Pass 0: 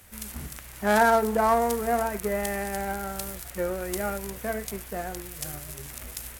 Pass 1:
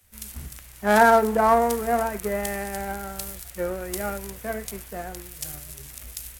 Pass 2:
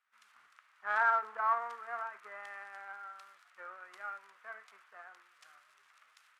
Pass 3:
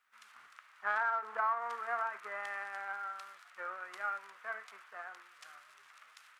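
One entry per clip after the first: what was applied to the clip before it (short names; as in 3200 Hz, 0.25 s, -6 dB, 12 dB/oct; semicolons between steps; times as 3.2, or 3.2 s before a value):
three-band expander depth 40%; gain +1 dB
ladder band-pass 1400 Hz, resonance 60%; gain -1.5 dB
compressor 6:1, threshold -36 dBFS, peak gain reduction 12 dB; gain +6 dB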